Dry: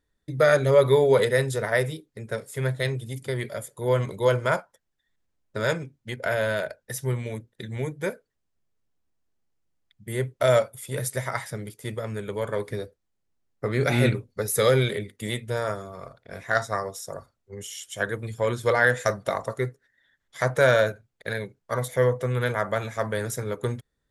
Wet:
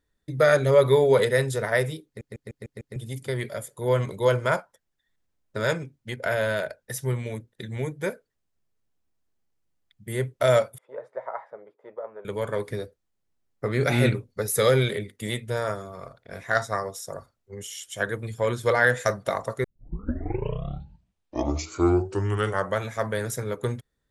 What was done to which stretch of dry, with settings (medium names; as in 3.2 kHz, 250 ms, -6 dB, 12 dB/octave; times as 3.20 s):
2.06 s: stutter in place 0.15 s, 6 plays
10.78–12.25 s: Butterworth band-pass 740 Hz, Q 1.2
19.64 s: tape start 3.22 s